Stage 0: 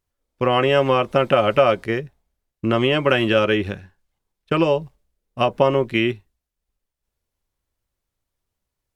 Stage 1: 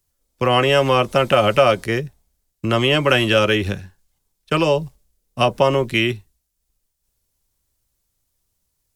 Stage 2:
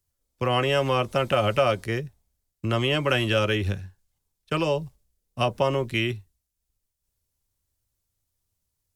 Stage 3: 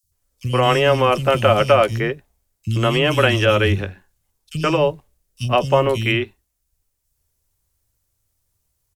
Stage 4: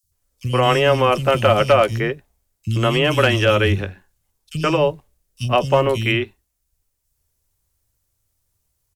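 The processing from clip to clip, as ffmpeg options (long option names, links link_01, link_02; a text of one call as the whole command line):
ffmpeg -i in.wav -filter_complex "[0:a]bass=frequency=250:gain=4,treble=frequency=4000:gain=12,acrossover=split=110|440|1700[link_01][link_02][link_03][link_04];[link_02]alimiter=limit=-20dB:level=0:latency=1[link_05];[link_01][link_05][link_03][link_04]amix=inputs=4:normalize=0,volume=2dB" out.wav
ffmpeg -i in.wav -af "equalizer=frequency=93:width_type=o:width=0.74:gain=7,volume=-7.5dB" out.wav
ffmpeg -i in.wav -filter_complex "[0:a]acrossover=split=220|3700[link_01][link_02][link_03];[link_01]adelay=30[link_04];[link_02]adelay=120[link_05];[link_04][link_05][link_03]amix=inputs=3:normalize=0,volume=8dB" out.wav
ffmpeg -i in.wav -af "volume=5dB,asoftclip=hard,volume=-5dB" out.wav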